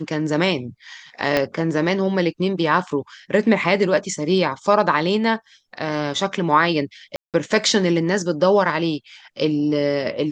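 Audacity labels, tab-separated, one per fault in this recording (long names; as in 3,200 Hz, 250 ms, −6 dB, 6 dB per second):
1.370000	1.370000	click −6 dBFS
7.160000	7.340000	drop-out 178 ms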